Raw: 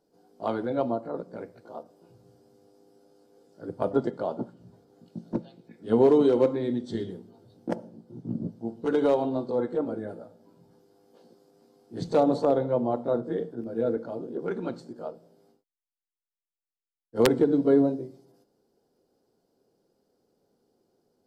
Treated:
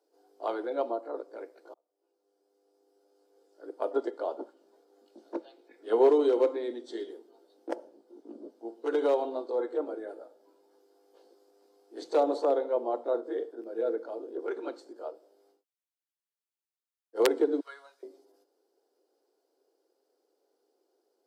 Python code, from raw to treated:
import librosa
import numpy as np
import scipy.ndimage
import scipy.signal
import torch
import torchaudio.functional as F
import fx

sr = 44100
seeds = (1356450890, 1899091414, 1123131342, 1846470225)

y = fx.peak_eq(x, sr, hz=1400.0, db=3.5, octaves=2.8, at=(5.18, 6.1))
y = fx.cheby1_highpass(y, sr, hz=1300.0, order=3, at=(17.6, 18.03))
y = fx.edit(y, sr, fx.fade_in_span(start_s=1.74, length_s=2.38), tone=tone)
y = scipy.signal.sosfilt(scipy.signal.butter(8, 310.0, 'highpass', fs=sr, output='sos'), y)
y = F.gain(torch.from_numpy(y), -2.5).numpy()